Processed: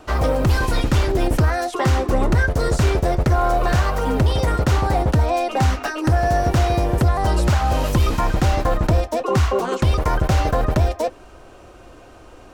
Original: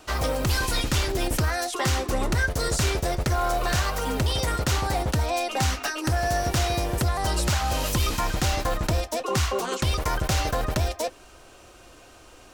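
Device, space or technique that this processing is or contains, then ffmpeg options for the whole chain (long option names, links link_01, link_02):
through cloth: -af "highshelf=frequency=2100:gain=-13.5,volume=8dB"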